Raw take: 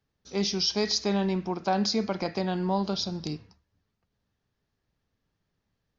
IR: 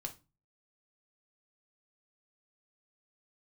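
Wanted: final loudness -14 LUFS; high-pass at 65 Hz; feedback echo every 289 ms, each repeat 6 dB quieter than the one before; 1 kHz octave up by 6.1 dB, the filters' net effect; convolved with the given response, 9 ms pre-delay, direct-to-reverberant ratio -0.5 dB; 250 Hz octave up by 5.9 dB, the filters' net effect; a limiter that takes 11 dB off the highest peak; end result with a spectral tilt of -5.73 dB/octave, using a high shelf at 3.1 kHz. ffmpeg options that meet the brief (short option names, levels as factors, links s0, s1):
-filter_complex "[0:a]highpass=65,equalizer=f=250:t=o:g=8.5,equalizer=f=1000:t=o:g=8.5,highshelf=f=3100:g=-8,alimiter=limit=0.106:level=0:latency=1,aecho=1:1:289|578|867|1156|1445|1734:0.501|0.251|0.125|0.0626|0.0313|0.0157,asplit=2[s0][s1];[1:a]atrim=start_sample=2205,adelay=9[s2];[s1][s2]afir=irnorm=-1:irlink=0,volume=1.33[s3];[s0][s3]amix=inputs=2:normalize=0,volume=3.35"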